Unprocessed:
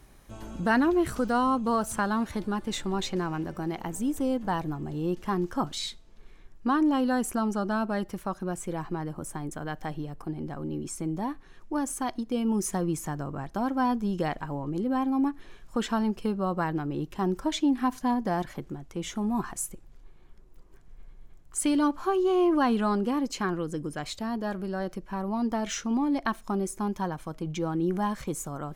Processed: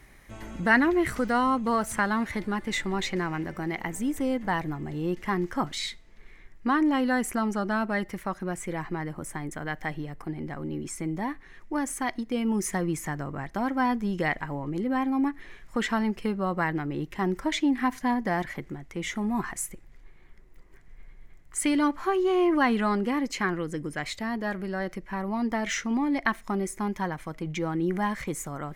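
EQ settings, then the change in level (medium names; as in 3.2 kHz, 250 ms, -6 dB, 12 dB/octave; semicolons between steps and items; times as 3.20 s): peaking EQ 2 kHz +14.5 dB 0.44 oct; 0.0 dB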